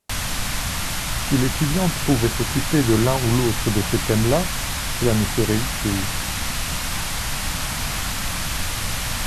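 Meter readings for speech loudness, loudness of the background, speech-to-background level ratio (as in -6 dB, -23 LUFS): -22.0 LUFS, -24.5 LUFS, 2.5 dB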